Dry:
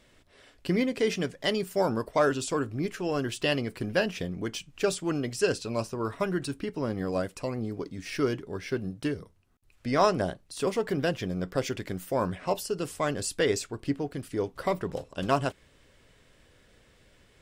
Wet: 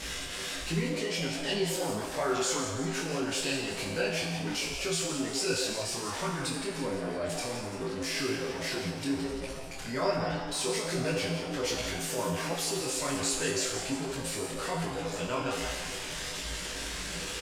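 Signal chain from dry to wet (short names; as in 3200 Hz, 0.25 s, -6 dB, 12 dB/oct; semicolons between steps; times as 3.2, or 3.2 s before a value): zero-crossing step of -27 dBFS; spectral gate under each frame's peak -30 dB strong; LPF 10000 Hz 12 dB/oct; high shelf 2300 Hz +9.5 dB; in parallel at -2 dB: limiter -16 dBFS, peak gain reduction 9 dB; on the sum: pitch shift -1 st; resonator 55 Hz, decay 1 s, harmonics odd, mix 90%; frequency-shifting echo 0.17 s, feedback 54%, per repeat +130 Hz, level -9 dB; detuned doubles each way 44 cents; gain +4 dB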